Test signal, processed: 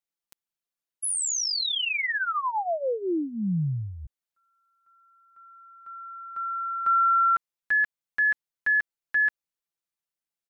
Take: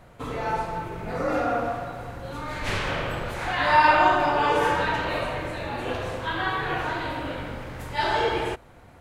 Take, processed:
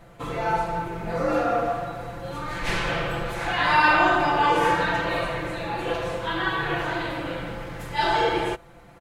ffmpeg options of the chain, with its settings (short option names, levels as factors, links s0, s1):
-af "aecho=1:1:5.9:0.68"